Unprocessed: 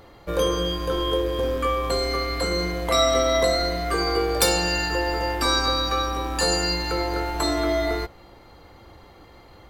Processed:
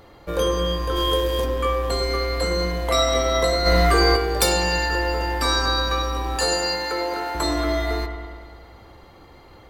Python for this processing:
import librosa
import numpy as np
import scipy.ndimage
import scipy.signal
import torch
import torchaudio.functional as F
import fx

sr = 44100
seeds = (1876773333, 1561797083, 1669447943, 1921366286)

y = fx.high_shelf(x, sr, hz=3200.0, db=10.5, at=(0.95, 1.44), fade=0.02)
y = fx.highpass(y, sr, hz=280.0, slope=12, at=(6.36, 7.35))
y = fx.echo_wet_lowpass(y, sr, ms=101, feedback_pct=68, hz=2700.0, wet_db=-8.0)
y = fx.env_flatten(y, sr, amount_pct=100, at=(3.65, 4.15), fade=0.02)